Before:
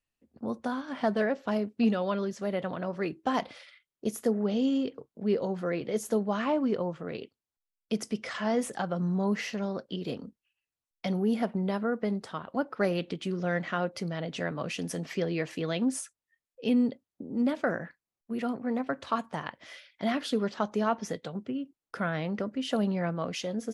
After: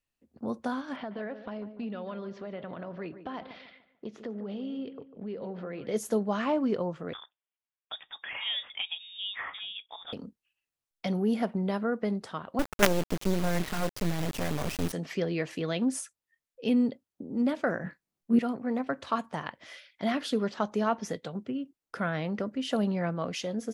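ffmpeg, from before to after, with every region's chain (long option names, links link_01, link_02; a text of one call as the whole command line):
ffmpeg -i in.wav -filter_complex "[0:a]asettb=1/sr,asplit=3[link_01][link_02][link_03];[link_01]atrim=end=0.964[link_04];[link_02]atrim=start=0.96:end=5.87,asetpts=PTS-STARTPTS,afade=type=in:duration=0.004:curve=qsin,afade=type=out:start_time=4.906:duration=0.004:curve=qsin,lowpass=frequency=4000:width=0.5412,lowpass=frequency=4000:width=1.3066,acompressor=threshold=-37dB:ratio=3:attack=3.2:release=140:knee=1:detection=peak,asplit=2[link_05][link_06];[link_06]adelay=147,lowpass=frequency=1600:poles=1,volume=-11dB,asplit=2[link_07][link_08];[link_08]adelay=147,lowpass=frequency=1600:poles=1,volume=0.39,asplit=2[link_09][link_10];[link_10]adelay=147,lowpass=frequency=1600:poles=1,volume=0.39,asplit=2[link_11][link_12];[link_12]adelay=147,lowpass=frequency=1600:poles=1,volume=0.39[link_13];[link_05][link_07][link_09][link_11][link_13]amix=inputs=5:normalize=0,atrim=end_sample=216531[link_14];[link_03]atrim=start=5.866[link_15];[link_04][link_14]acrossfade=duration=0.004:curve1=hsin:curve2=qsin[link_16];[link_16][link_15]acrossfade=duration=0.004:curve1=qsin:curve2=hsin,asettb=1/sr,asplit=3[link_17][link_18][link_19];[link_17]atrim=end=7.134[link_20];[link_18]atrim=start=7.13:end=10.13,asetpts=PTS-STARTPTS,afade=type=in:duration=0.004:curve=qsin,afade=type=out:start_time=2.996:duration=0.004:curve=qsin,highpass=620,lowpass=frequency=3300:width_type=q:width=0.5098,lowpass=frequency=3300:width_type=q:width=0.6013,lowpass=frequency=3300:width_type=q:width=0.9,lowpass=frequency=3300:width_type=q:width=2.563,afreqshift=-3900[link_21];[link_19]atrim=start=10.126[link_22];[link_20][link_21]acrossfade=duration=0.004:curve1=hsin:curve2=qsin[link_23];[link_23][link_22]acrossfade=duration=0.004:curve1=qsin:curve2=hsin,asettb=1/sr,asplit=3[link_24][link_25][link_26];[link_24]atrim=end=12.594[link_27];[link_25]atrim=start=12.59:end=14.93,asetpts=PTS-STARTPTS,afade=type=in:duration=0.004:curve=qsin,afade=type=out:start_time=2.336:duration=0.004:curve=qsin,highpass=56,lowshelf=frequency=480:gain=10.5,acrusher=bits=3:dc=4:mix=0:aa=0.000001[link_28];[link_26]atrim=start=14.926[link_29];[link_27][link_28]acrossfade=duration=0.004:curve1=hsin:curve2=qsin[link_30];[link_30][link_29]acrossfade=duration=0.004:curve1=qsin:curve2=hsin,asettb=1/sr,asplit=3[link_31][link_32][link_33];[link_31]atrim=end=17.844[link_34];[link_32]atrim=start=17.84:end=18.39,asetpts=PTS-STARTPTS,afade=type=in:duration=0.004:curve=qsin,afade=type=out:start_time=0.546:duration=0.004:curve=qsin,equalizer=frequency=190:width=0.61:gain=8.5,asplit=2[link_35][link_36];[link_36]adelay=21,volume=-2dB[link_37];[link_35][link_37]amix=inputs=2:normalize=0,atrim=end_sample=24255[link_38];[link_33]atrim=start=18.386[link_39];[link_34][link_38]acrossfade=duration=0.004:curve1=hsin:curve2=qsin[link_40];[link_40][link_39]acrossfade=duration=0.004:curve1=qsin:curve2=hsin" out.wav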